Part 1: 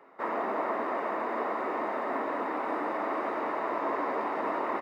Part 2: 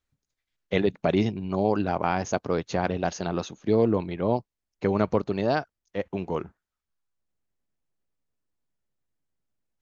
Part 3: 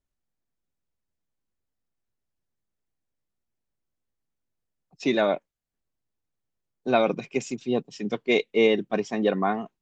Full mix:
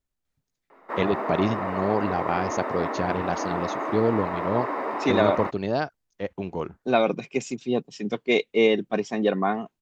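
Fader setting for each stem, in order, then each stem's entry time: +2.0 dB, -1.0 dB, +0.5 dB; 0.70 s, 0.25 s, 0.00 s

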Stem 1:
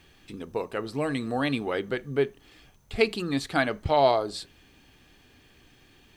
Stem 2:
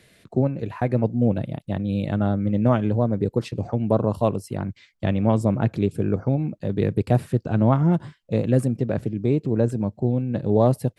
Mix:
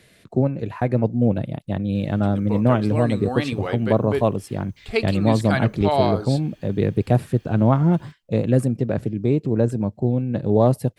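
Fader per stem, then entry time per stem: +0.5 dB, +1.5 dB; 1.95 s, 0.00 s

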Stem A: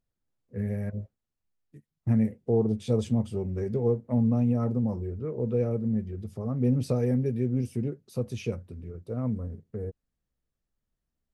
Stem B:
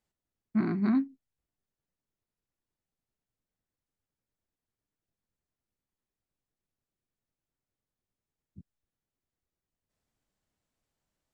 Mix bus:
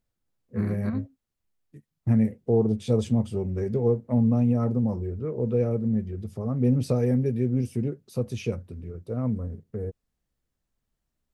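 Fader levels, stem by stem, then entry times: +2.5 dB, -6.0 dB; 0.00 s, 0.00 s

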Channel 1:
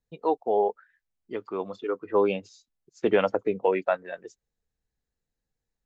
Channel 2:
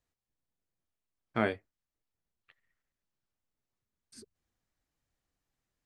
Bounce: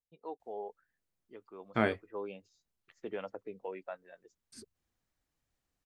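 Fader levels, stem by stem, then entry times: -18.0 dB, +0.5 dB; 0.00 s, 0.40 s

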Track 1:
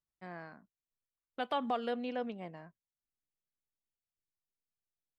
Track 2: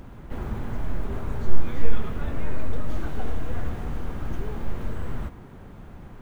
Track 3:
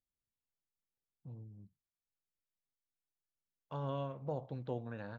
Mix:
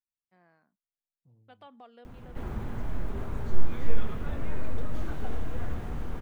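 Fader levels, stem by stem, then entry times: -17.5 dB, -4.0 dB, -13.0 dB; 0.10 s, 2.05 s, 0.00 s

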